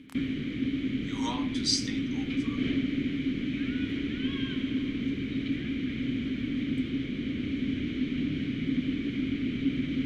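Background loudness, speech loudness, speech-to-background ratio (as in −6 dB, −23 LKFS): −31.0 LKFS, −31.5 LKFS, −0.5 dB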